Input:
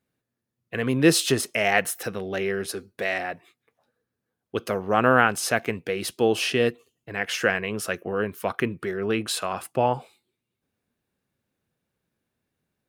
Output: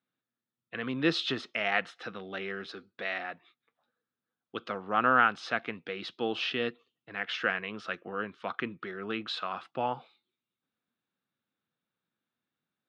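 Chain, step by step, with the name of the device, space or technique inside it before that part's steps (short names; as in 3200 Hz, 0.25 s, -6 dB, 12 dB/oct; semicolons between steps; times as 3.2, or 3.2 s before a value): kitchen radio (speaker cabinet 180–4300 Hz, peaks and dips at 410 Hz -6 dB, 590 Hz -4 dB, 1300 Hz +7 dB, 3600 Hz +7 dB); gain -7.5 dB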